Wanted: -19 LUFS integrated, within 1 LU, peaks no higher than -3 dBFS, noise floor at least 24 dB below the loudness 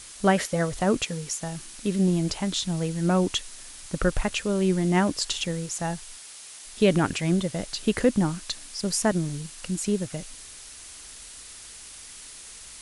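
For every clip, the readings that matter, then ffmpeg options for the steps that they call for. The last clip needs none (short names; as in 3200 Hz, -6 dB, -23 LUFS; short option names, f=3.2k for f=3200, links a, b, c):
noise floor -44 dBFS; noise floor target -50 dBFS; loudness -26.0 LUFS; peak -9.0 dBFS; loudness target -19.0 LUFS
-> -af "afftdn=nr=6:nf=-44"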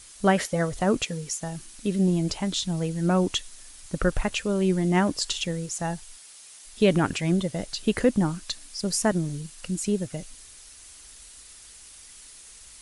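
noise floor -48 dBFS; noise floor target -50 dBFS
-> -af "afftdn=nr=6:nf=-48"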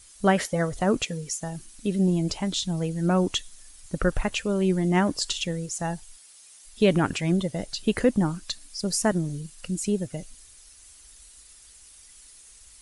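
noise floor -51 dBFS; loudness -26.0 LUFS; peak -9.0 dBFS; loudness target -19.0 LUFS
-> -af "volume=7dB,alimiter=limit=-3dB:level=0:latency=1"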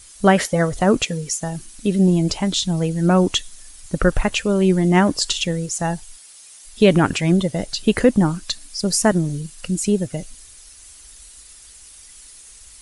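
loudness -19.0 LUFS; peak -3.0 dBFS; noise floor -44 dBFS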